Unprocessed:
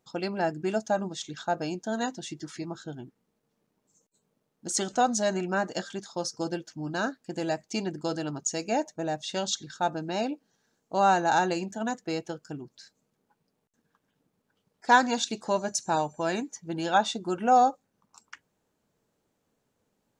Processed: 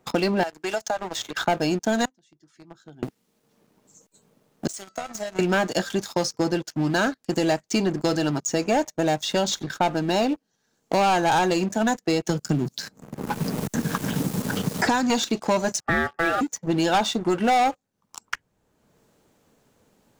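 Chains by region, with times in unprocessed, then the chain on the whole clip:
0:00.43–0:01.41: high-pass filter 610 Hz + downward compressor 3 to 1, threshold −38 dBFS
0:02.05–0:03.03: leveller curve on the samples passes 1 + gate with flip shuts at −33 dBFS, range −24 dB
0:04.67–0:05.39: low-shelf EQ 300 Hz −7.5 dB + downward compressor 5 to 1, threshold −28 dBFS + tuned comb filter 660 Hz, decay 0.21 s, mix 90%
0:12.27–0:15.10: bass and treble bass +13 dB, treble +10 dB + multiband upward and downward compressor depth 100%
0:15.80–0:16.41: low-pass filter 1,200 Hz + hum removal 136.8 Hz, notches 2 + ring modulation 1,000 Hz
whole clip: leveller curve on the samples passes 3; multiband upward and downward compressor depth 70%; level −2 dB

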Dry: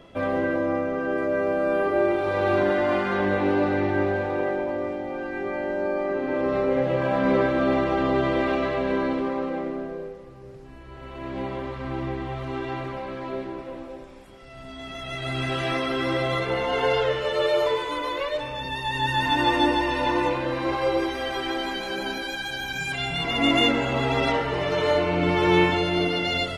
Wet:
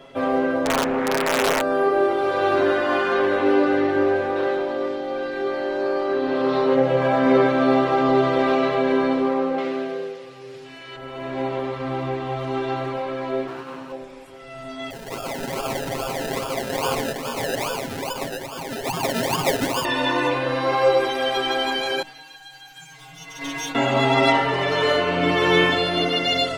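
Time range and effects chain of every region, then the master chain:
0:00.65–0:01.61: low-shelf EQ 100 Hz +10 dB + wrap-around overflow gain 16 dB + highs frequency-modulated by the lows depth 0.59 ms
0:04.36–0:06.75: parametric band 3,800 Hz +9 dB 0.92 octaves + saturating transformer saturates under 480 Hz
0:09.58–0:10.96: meter weighting curve D + floating-point word with a short mantissa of 8 bits
0:13.47–0:13.92: lower of the sound and its delayed copy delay 0.71 ms + high-pass filter 69 Hz
0:14.90–0:19.85: high-pass filter 930 Hz + sample-and-hold swept by an LFO 31×, swing 60% 2.4 Hz
0:22.02–0:23.75: lower of the sound and its delayed copy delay 6.2 ms + stiff-string resonator 150 Hz, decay 0.23 s, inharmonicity 0.002 + expander for the loud parts, over −43 dBFS
whole clip: low-shelf EQ 150 Hz −10 dB; mains-hum notches 50/100/150/200/250/300 Hz; comb filter 7.4 ms, depth 77%; level +3.5 dB

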